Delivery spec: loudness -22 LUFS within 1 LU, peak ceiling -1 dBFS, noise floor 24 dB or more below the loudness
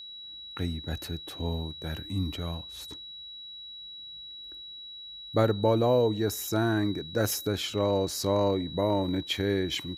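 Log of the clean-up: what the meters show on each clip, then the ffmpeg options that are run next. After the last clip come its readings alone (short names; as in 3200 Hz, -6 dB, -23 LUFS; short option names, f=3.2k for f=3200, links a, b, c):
steady tone 3900 Hz; tone level -41 dBFS; loudness -29.0 LUFS; peak -9.5 dBFS; loudness target -22.0 LUFS
-> -af "bandreject=f=3.9k:w=30"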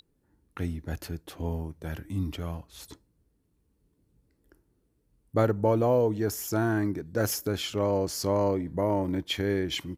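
steady tone none; loudness -29.0 LUFS; peak -9.5 dBFS; loudness target -22.0 LUFS
-> -af "volume=7dB"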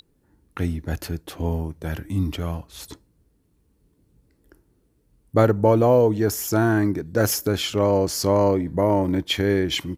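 loudness -22.0 LUFS; peak -2.5 dBFS; noise floor -65 dBFS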